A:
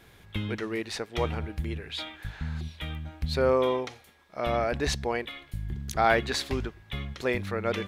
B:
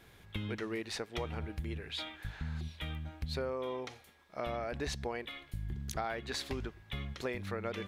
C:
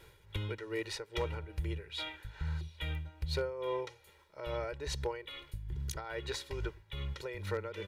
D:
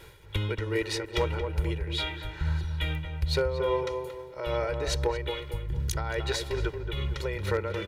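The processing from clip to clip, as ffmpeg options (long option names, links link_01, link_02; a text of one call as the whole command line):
ffmpeg -i in.wav -af "acompressor=threshold=-29dB:ratio=10,volume=-4dB" out.wav
ffmpeg -i in.wav -af "tremolo=f=2.4:d=0.66,aecho=1:1:2.1:0.94,aeval=exprs='0.0562*(abs(mod(val(0)/0.0562+3,4)-2)-1)':channel_layout=same" out.wav
ffmpeg -i in.wav -filter_complex "[0:a]asplit=2[link_01][link_02];[link_02]adelay=228,lowpass=frequency=1300:poles=1,volume=-5.5dB,asplit=2[link_03][link_04];[link_04]adelay=228,lowpass=frequency=1300:poles=1,volume=0.44,asplit=2[link_05][link_06];[link_06]adelay=228,lowpass=frequency=1300:poles=1,volume=0.44,asplit=2[link_07][link_08];[link_08]adelay=228,lowpass=frequency=1300:poles=1,volume=0.44,asplit=2[link_09][link_10];[link_10]adelay=228,lowpass=frequency=1300:poles=1,volume=0.44[link_11];[link_01][link_03][link_05][link_07][link_09][link_11]amix=inputs=6:normalize=0,volume=8dB" out.wav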